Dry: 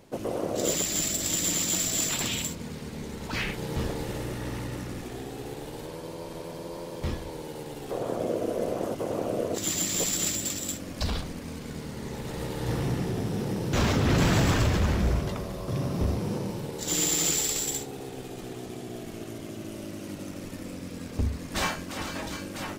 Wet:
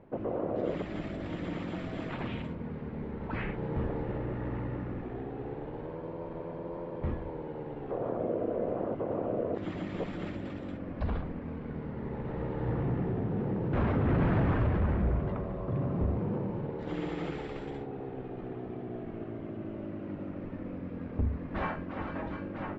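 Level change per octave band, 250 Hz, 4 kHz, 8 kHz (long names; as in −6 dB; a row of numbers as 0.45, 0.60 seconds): −2.0 dB, −21.0 dB, below −40 dB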